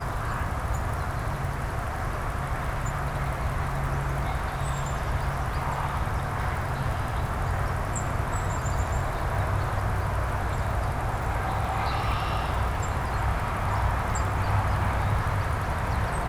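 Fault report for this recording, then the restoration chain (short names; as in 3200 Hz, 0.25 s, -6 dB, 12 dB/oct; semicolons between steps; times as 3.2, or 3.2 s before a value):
crackle 49/s -34 dBFS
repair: de-click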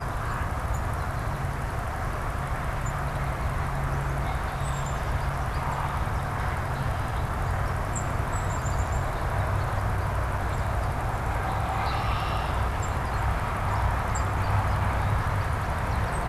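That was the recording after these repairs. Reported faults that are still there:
none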